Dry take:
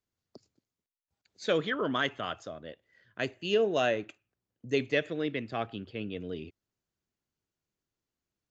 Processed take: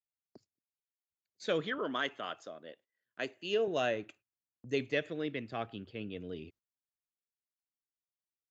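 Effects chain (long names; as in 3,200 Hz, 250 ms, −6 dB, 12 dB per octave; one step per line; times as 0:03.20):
noise gate −56 dBFS, range −19 dB
0:01.78–0:03.68: high-pass filter 240 Hz 12 dB per octave
level −4.5 dB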